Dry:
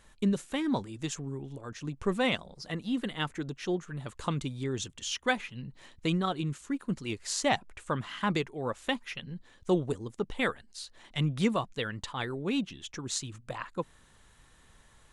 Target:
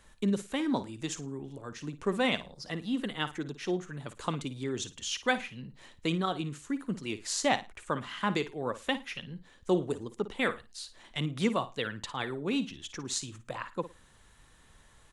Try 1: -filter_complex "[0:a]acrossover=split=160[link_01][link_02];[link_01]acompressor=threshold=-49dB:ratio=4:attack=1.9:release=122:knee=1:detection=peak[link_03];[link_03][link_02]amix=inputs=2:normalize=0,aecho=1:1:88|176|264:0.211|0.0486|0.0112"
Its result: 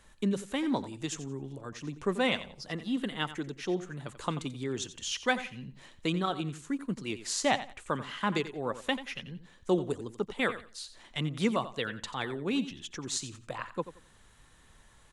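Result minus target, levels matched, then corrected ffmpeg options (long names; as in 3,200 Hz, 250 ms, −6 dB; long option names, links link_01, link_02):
echo 33 ms late
-filter_complex "[0:a]acrossover=split=160[link_01][link_02];[link_01]acompressor=threshold=-49dB:ratio=4:attack=1.9:release=122:knee=1:detection=peak[link_03];[link_03][link_02]amix=inputs=2:normalize=0,aecho=1:1:55|110|165:0.211|0.0486|0.0112"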